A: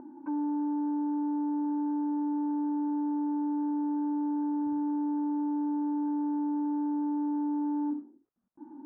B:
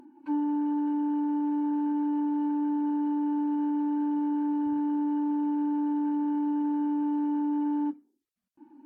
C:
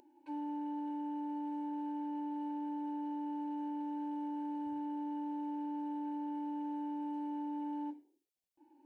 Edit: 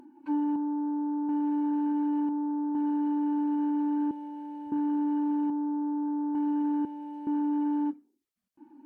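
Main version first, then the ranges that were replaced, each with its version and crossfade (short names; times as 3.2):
B
0.56–1.29 from A
2.29–2.75 from A
4.11–4.72 from C
5.5–6.35 from A
6.85–7.27 from C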